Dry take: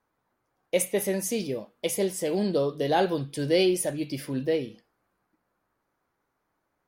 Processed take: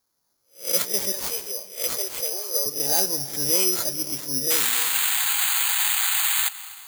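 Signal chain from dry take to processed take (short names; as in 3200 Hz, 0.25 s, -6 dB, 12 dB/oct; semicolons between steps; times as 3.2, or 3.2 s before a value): spectral swells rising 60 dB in 0.32 s; recorder AGC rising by 5.7 dB/s; 1.12–2.66 steep high-pass 410 Hz 36 dB/oct; 4.5–6.49 painted sound noise 730–4200 Hz -23 dBFS; reverb RT60 2.4 s, pre-delay 0.153 s, DRR 14.5 dB; careless resampling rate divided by 8×, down none, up zero stuff; gain -8.5 dB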